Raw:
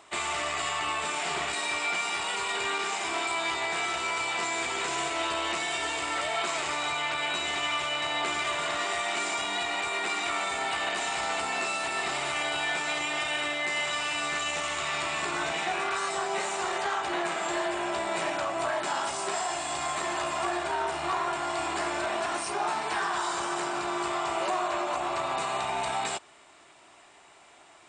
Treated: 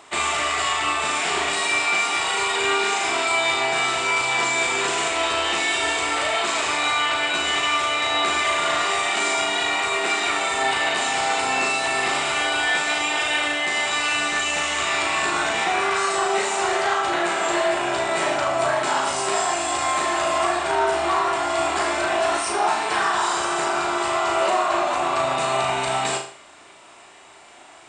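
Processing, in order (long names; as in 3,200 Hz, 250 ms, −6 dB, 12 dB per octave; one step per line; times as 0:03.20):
mains-hum notches 50/100/150 Hz
flutter between parallel walls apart 6.5 metres, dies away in 0.46 s
level +6.5 dB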